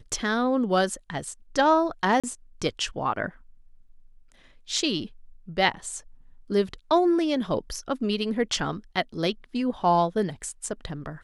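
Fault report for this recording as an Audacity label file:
2.200000	2.240000	gap 36 ms

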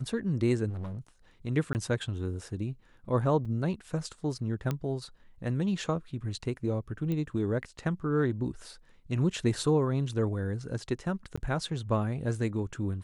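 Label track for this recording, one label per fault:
0.690000	0.980000	clipped -33.5 dBFS
1.730000	1.750000	gap 19 ms
3.450000	3.450000	gap 4.7 ms
4.710000	4.710000	pop -18 dBFS
7.120000	7.120000	pop -22 dBFS
11.360000	11.380000	gap 15 ms

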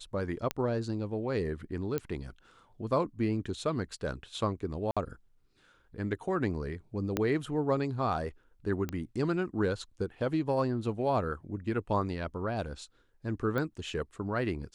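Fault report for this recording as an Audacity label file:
0.510000	0.510000	pop -15 dBFS
1.980000	1.980000	pop -18 dBFS
4.910000	4.970000	gap 56 ms
7.170000	7.170000	pop -14 dBFS
8.890000	8.890000	pop -21 dBFS
13.580000	13.580000	pop -21 dBFS

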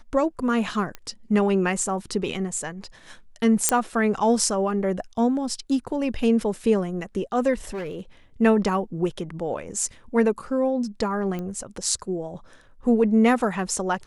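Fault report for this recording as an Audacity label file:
0.950000	0.950000	pop -20 dBFS
3.690000	3.690000	pop -2 dBFS
7.680000	8.010000	clipped -27.5 dBFS
11.390000	11.390000	pop -20 dBFS

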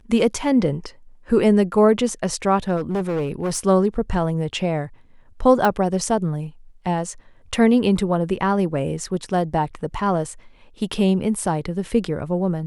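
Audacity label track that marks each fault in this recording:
2.760000	3.590000	clipped -19 dBFS
5.650000	5.650000	pop -8 dBFS

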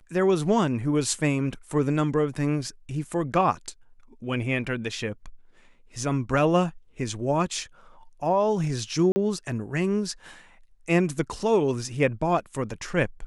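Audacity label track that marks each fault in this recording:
9.120000	9.160000	gap 40 ms

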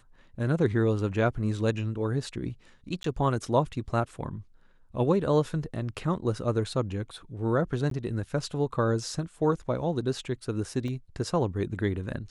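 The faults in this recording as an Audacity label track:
3.030000	3.040000	gap 13 ms
7.900000	7.910000	gap 13 ms
10.880000	10.880000	gap 2.3 ms

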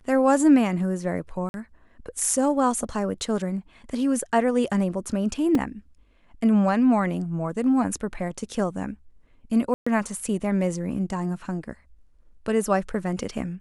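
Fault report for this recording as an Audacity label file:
1.490000	1.540000	gap 51 ms
5.550000	5.550000	gap 2.4 ms
9.740000	9.870000	gap 0.125 s

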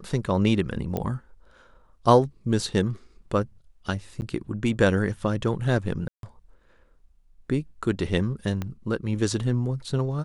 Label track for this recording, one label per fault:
0.970000	0.970000	pop -15 dBFS
4.210000	4.220000	gap 9.9 ms
6.080000	6.230000	gap 0.152 s
8.620000	8.620000	pop -17 dBFS

